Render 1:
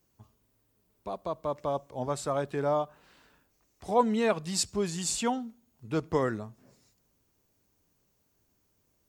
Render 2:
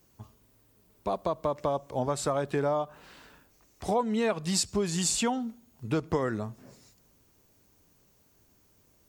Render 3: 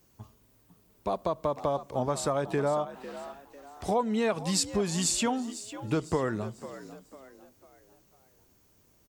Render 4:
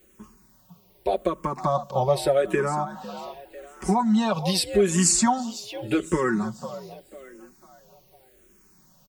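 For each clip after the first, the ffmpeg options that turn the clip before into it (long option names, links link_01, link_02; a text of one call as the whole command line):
ffmpeg -i in.wav -af "acompressor=threshold=-33dB:ratio=5,volume=8dB" out.wav
ffmpeg -i in.wav -filter_complex "[0:a]asplit=5[link_01][link_02][link_03][link_04][link_05];[link_02]adelay=499,afreqshift=66,volume=-14dB[link_06];[link_03]adelay=998,afreqshift=132,volume=-22.4dB[link_07];[link_04]adelay=1497,afreqshift=198,volume=-30.8dB[link_08];[link_05]adelay=1996,afreqshift=264,volume=-39.2dB[link_09];[link_01][link_06][link_07][link_08][link_09]amix=inputs=5:normalize=0" out.wav
ffmpeg -i in.wav -filter_complex "[0:a]aecho=1:1:5.4:0.81,asplit=2[link_01][link_02];[link_02]afreqshift=-0.84[link_03];[link_01][link_03]amix=inputs=2:normalize=1,volume=7dB" out.wav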